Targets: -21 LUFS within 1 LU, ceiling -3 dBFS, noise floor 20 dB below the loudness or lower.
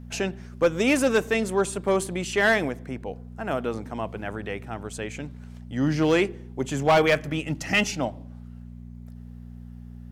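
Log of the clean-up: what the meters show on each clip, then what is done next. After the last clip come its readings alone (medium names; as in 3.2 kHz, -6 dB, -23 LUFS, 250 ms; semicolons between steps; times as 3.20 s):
clipped samples 0.4%; clipping level -13.5 dBFS; hum 60 Hz; highest harmonic 240 Hz; hum level -39 dBFS; loudness -25.5 LUFS; peak level -13.5 dBFS; loudness target -21.0 LUFS
-> clip repair -13.5 dBFS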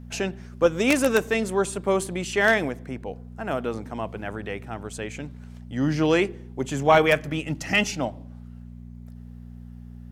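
clipped samples 0.0%; hum 60 Hz; highest harmonic 240 Hz; hum level -39 dBFS
-> de-hum 60 Hz, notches 4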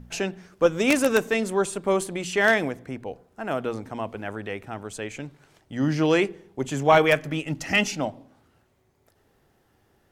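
hum not found; loudness -24.5 LUFS; peak level -4.5 dBFS; loudness target -21.0 LUFS
-> trim +3.5 dB; peak limiter -3 dBFS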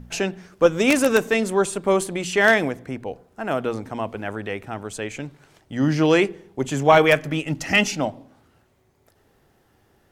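loudness -21.0 LUFS; peak level -3.0 dBFS; noise floor -62 dBFS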